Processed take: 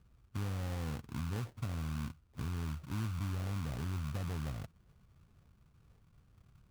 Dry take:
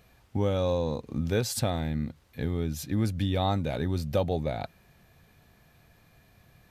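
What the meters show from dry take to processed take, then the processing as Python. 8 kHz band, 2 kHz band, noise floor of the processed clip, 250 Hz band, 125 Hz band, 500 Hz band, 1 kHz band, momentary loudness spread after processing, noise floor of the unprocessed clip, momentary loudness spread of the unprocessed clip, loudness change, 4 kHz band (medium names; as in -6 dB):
-14.0 dB, -8.0 dB, -67 dBFS, -11.5 dB, -7.0 dB, -21.0 dB, -13.5 dB, 5 LU, -61 dBFS, 7 LU, -10.0 dB, -13.5 dB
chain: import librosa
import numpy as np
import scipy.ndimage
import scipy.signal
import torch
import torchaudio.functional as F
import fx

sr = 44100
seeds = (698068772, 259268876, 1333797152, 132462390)

p1 = fx.tone_stack(x, sr, knobs='6-0-2')
p2 = fx.over_compress(p1, sr, threshold_db=-48.0, ratio=-1.0)
p3 = p1 + F.gain(torch.from_numpy(p2), -1.5).numpy()
p4 = fx.filter_lfo_lowpass(p3, sr, shape='saw_up', hz=2.0, low_hz=890.0, high_hz=2100.0, q=1.0)
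p5 = fx.sample_hold(p4, sr, seeds[0], rate_hz=1300.0, jitter_pct=20)
y = F.gain(torch.from_numpy(p5), 3.5).numpy()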